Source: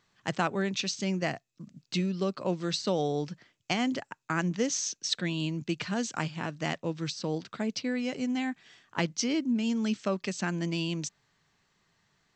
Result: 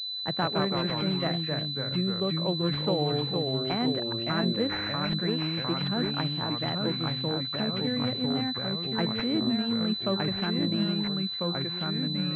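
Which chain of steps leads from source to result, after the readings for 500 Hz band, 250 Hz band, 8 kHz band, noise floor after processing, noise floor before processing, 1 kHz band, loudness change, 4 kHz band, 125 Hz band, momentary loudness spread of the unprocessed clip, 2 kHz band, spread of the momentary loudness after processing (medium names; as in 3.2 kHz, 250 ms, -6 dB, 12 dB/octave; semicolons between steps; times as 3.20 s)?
+2.5 dB, +2.5 dB, under -25 dB, -34 dBFS, -73 dBFS, +2.0 dB, +3.5 dB, +9.5 dB, +5.0 dB, 7 LU, -1.0 dB, 3 LU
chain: ever faster or slower copies 114 ms, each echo -2 st, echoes 3; class-D stage that switches slowly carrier 4 kHz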